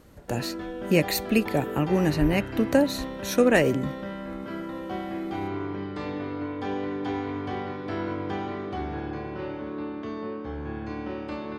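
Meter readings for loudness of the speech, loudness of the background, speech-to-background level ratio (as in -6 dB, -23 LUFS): -24.5 LUFS, -33.5 LUFS, 9.0 dB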